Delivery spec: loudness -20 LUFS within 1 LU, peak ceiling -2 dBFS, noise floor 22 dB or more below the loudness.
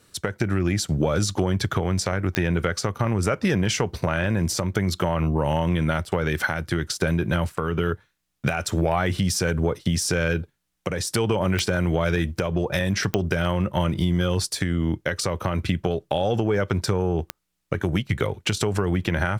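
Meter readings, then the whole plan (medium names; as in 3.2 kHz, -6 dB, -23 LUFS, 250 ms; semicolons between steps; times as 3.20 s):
clicks found 4; loudness -24.5 LUFS; peak level -7.0 dBFS; loudness target -20.0 LUFS
-> de-click; trim +4.5 dB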